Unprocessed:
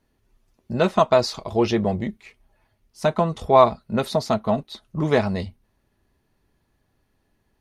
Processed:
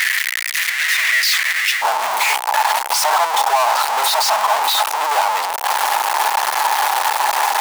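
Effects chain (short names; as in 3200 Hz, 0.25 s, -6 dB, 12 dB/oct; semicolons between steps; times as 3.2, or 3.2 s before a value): infinite clipping; ladder high-pass 1800 Hz, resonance 75%, from 1.81 s 810 Hz; maximiser +23 dB; gain -4.5 dB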